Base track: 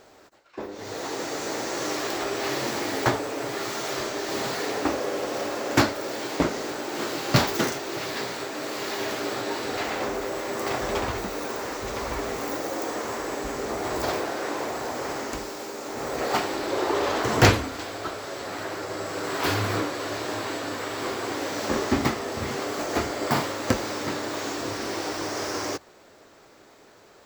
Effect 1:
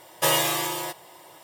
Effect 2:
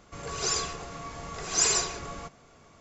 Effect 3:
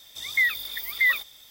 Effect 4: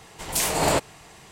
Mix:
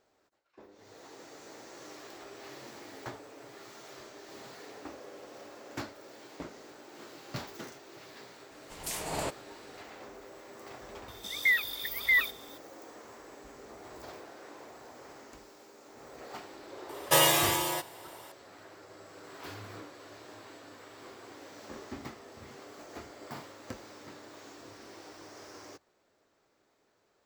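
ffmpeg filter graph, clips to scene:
-filter_complex "[0:a]volume=-19.5dB[a];[4:a]atrim=end=1.31,asetpts=PTS-STARTPTS,volume=-13dB,afade=t=in:d=0.004:c=hsin,afade=t=out:st=1.306:d=0.004:c=hsin,adelay=8510[b];[3:a]atrim=end=1.5,asetpts=PTS-STARTPTS,volume=-3.5dB,afade=t=in:d=0.004:c=hsin,afade=t=out:st=1.496:d=0.004:c=hsin,adelay=11080[c];[1:a]atrim=end=1.43,asetpts=PTS-STARTPTS,volume=-1dB,afade=t=in:d=0.004:c=hsin,afade=t=out:st=1.426:d=0.004:c=hsin,adelay=16890[d];[a][b][c][d]amix=inputs=4:normalize=0"

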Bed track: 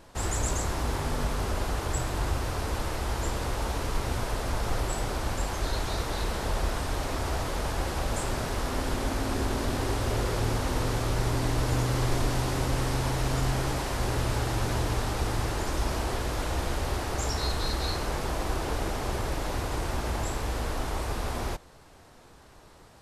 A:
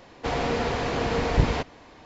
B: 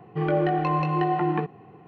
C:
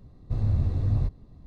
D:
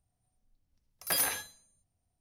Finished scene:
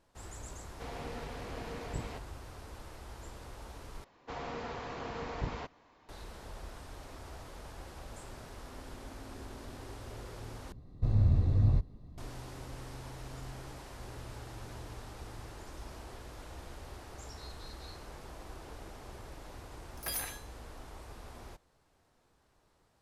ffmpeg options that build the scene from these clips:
-filter_complex "[1:a]asplit=2[a][b];[0:a]volume=-17.5dB[c];[b]equalizer=f=1.1k:t=o:w=0.97:g=5.5[d];[c]asplit=3[e][f][g];[e]atrim=end=4.044[h];[d]atrim=end=2.05,asetpts=PTS-STARTPTS,volume=-16dB[i];[f]atrim=start=6.086:end=10.724[j];[3:a]atrim=end=1.46,asetpts=PTS-STARTPTS,volume=-1.5dB[k];[g]atrim=start=12.176[l];[a]atrim=end=2.05,asetpts=PTS-STARTPTS,volume=-17.5dB,afade=t=in:d=0.004:c=hsin,afade=t=out:st=2.046:d=0.004:c=hsin,adelay=560[m];[4:a]atrim=end=2.2,asetpts=PTS-STARTPTS,volume=-8dB,afade=t=in:d=0.004:c=hsin,afade=t=out:st=2.196:d=0.004:c=hsin,adelay=18960[n];[h][i]acrossfade=d=0.004:c1=hsin:c2=hsin[o];[o][j]acrossfade=d=0.004:c1=hsin:c2=hsin[p];[p][k]acrossfade=d=0.004:c1=hsin:c2=hsin[q];[q][l]acrossfade=d=0.004:c1=hsin:c2=hsin[r];[r][m][n]amix=inputs=3:normalize=0"

